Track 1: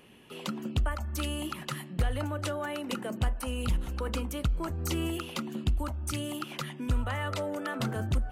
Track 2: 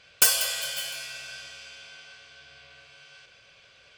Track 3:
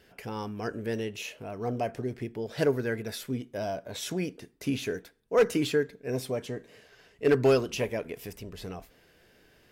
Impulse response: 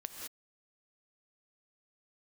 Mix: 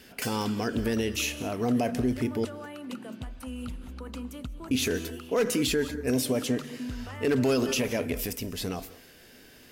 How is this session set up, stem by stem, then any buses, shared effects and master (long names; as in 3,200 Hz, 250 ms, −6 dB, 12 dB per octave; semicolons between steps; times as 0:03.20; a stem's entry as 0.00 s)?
−10.0 dB, 0.00 s, send −7 dB, downward compressor, threshold −27 dBFS, peak gain reduction 5 dB
−8.5 dB, 0.00 s, no send, low-pass filter 3,800 Hz 6 dB per octave; automatic ducking −13 dB, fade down 1.10 s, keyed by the third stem
+3.0 dB, 0.00 s, muted 0:02.45–0:04.71, send −9.5 dB, high-shelf EQ 3,500 Hz +10 dB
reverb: on, pre-delay 3 ms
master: parametric band 250 Hz +9.5 dB 0.3 octaves; brickwall limiter −17.5 dBFS, peak gain reduction 10.5 dB